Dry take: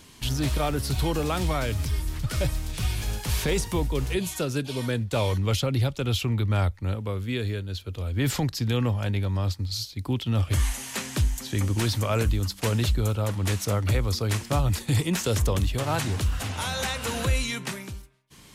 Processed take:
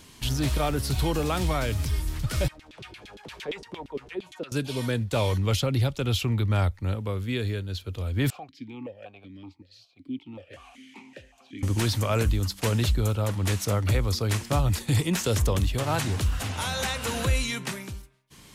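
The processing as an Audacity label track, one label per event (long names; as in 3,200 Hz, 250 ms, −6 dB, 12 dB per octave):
2.480000	4.520000	auto-filter band-pass saw down 8.7 Hz 260–3,700 Hz
8.300000	11.630000	formant filter that steps through the vowels 5.3 Hz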